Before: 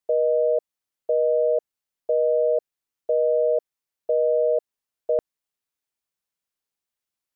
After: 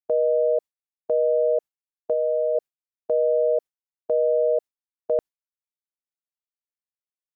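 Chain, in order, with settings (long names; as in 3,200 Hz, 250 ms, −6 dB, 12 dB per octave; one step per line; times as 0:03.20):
noise gate with hold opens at −15 dBFS
0:02.13–0:02.55: parametric band 500 Hz −4 dB 0.44 octaves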